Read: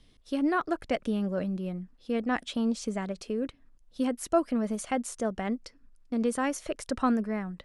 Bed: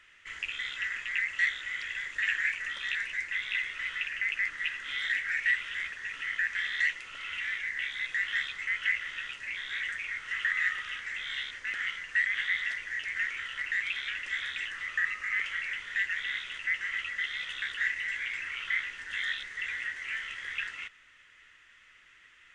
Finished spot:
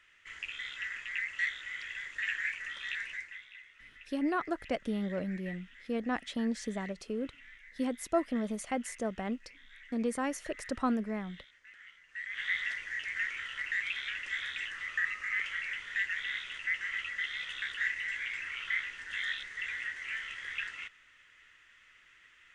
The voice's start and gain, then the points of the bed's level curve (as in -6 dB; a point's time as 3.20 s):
3.80 s, -4.5 dB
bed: 3.13 s -5 dB
3.52 s -20.5 dB
12.04 s -20.5 dB
12.49 s -2.5 dB